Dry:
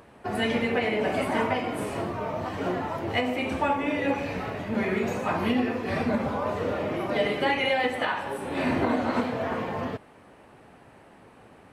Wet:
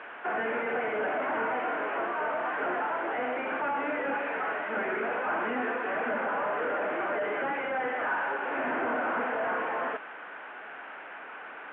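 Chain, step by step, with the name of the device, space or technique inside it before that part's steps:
digital answering machine (band-pass filter 360–3,400 Hz; linear delta modulator 16 kbit/s, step −42.5 dBFS; loudspeaker in its box 370–3,000 Hz, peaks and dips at 380 Hz −4 dB, 540 Hz −4 dB, 1,500 Hz +10 dB)
level +4.5 dB

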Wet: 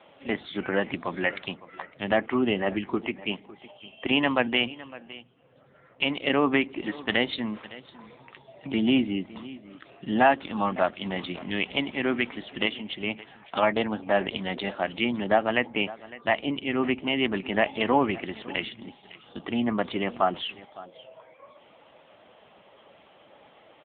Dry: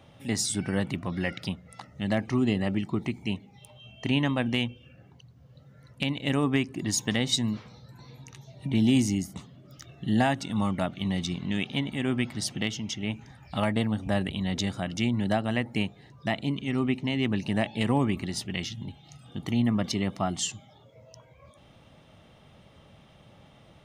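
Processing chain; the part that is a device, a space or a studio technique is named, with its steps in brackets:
satellite phone (band-pass filter 400–3,300 Hz; single-tap delay 558 ms −18.5 dB; level +8.5 dB; AMR narrowband 6.7 kbit/s 8,000 Hz)

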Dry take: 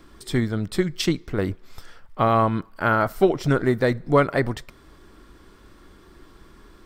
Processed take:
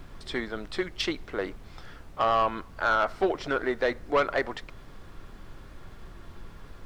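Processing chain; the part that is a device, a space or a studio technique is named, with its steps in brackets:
aircraft cabin announcement (band-pass filter 490–4,100 Hz; soft clipping −16 dBFS, distortion −12 dB; brown noise bed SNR 12 dB)

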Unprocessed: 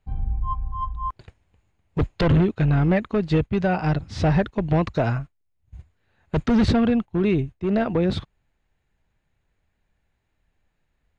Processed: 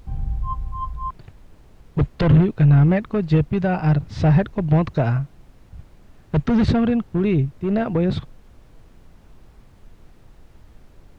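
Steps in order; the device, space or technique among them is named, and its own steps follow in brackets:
car interior (parametric band 140 Hz +7 dB 0.53 octaves; high-shelf EQ 4,600 Hz −6.5 dB; brown noise bed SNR 24 dB)

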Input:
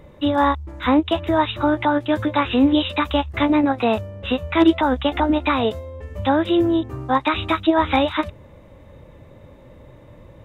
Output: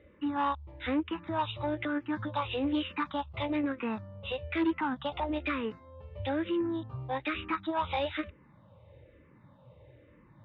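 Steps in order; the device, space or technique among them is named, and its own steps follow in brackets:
barber-pole phaser into a guitar amplifier (frequency shifter mixed with the dry sound −1.1 Hz; soft clipping −13.5 dBFS, distortion −15 dB; loudspeaker in its box 80–3,600 Hz, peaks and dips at 120 Hz +3 dB, 250 Hz −3 dB, 390 Hz −4 dB, 690 Hz −5 dB)
level −7.5 dB

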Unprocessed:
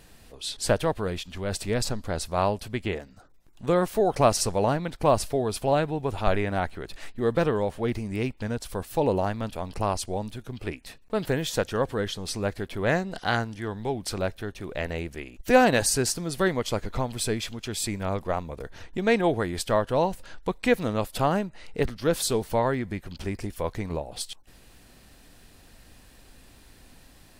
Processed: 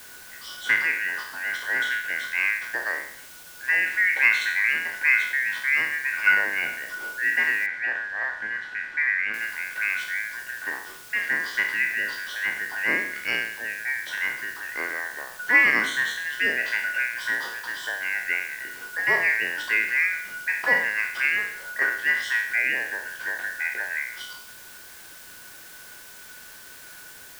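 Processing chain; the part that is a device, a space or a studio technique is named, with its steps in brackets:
peak hold with a decay on every bin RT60 0.63 s
split-band scrambled radio (band-splitting scrambler in four parts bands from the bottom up 2143; band-pass filter 340–2,900 Hz; white noise bed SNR 19 dB)
0:07.66–0:09.34: Bessel low-pass filter 2,800 Hz, order 2

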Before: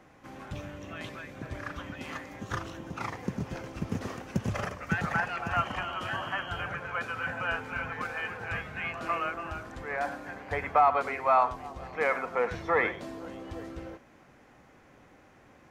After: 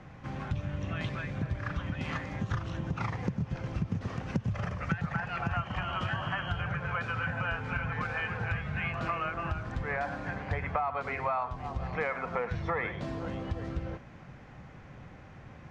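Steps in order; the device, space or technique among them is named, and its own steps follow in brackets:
jukebox (low-pass filter 5,000 Hz 12 dB per octave; low shelf with overshoot 210 Hz +8.5 dB, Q 1.5; downward compressor 5 to 1, threshold −34 dBFS, peak gain reduction 16 dB)
level +4.5 dB

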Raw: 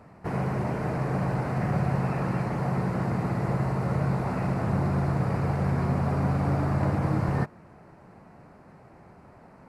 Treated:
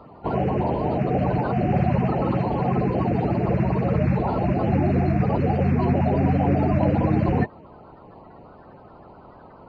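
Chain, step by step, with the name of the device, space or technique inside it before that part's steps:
clip after many re-uploads (low-pass filter 4,100 Hz 24 dB per octave; spectral magnitudes quantised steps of 30 dB)
level +6 dB

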